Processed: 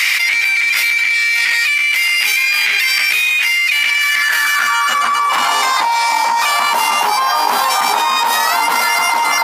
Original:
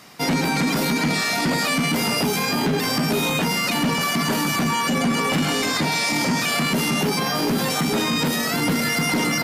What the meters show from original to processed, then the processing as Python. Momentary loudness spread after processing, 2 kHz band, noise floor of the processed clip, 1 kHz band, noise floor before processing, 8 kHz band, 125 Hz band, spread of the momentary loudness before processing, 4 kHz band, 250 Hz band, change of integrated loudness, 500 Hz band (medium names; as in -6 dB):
2 LU, +12.0 dB, -15 dBFS, +11.5 dB, -23 dBFS, +5.5 dB, under -25 dB, 1 LU, +7.0 dB, -19.0 dB, +8.0 dB, -3.5 dB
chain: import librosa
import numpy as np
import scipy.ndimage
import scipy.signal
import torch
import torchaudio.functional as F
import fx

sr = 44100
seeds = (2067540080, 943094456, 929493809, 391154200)

y = fx.filter_sweep_highpass(x, sr, from_hz=2200.0, to_hz=930.0, start_s=3.85, end_s=5.54, q=5.4)
y = fx.env_flatten(y, sr, amount_pct=100)
y = y * librosa.db_to_amplitude(-2.0)